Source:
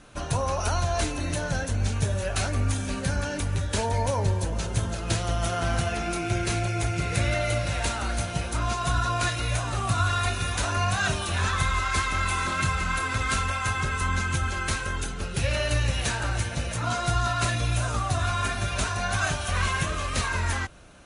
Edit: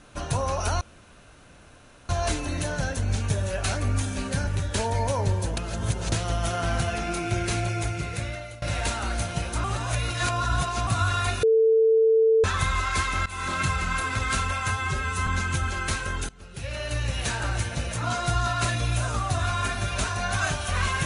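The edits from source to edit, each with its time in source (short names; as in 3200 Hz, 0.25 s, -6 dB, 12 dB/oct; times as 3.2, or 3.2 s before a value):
0.81 insert room tone 1.28 s
3.19–3.46 cut
4.56–5.11 reverse
6.7–7.61 fade out, to -21 dB
8.63–9.86 reverse
10.42–11.43 bleep 446 Hz -15.5 dBFS
12.25–12.51 fade in, from -18 dB
13.69–14.07 stretch 1.5×
15.09–16.2 fade in, from -20.5 dB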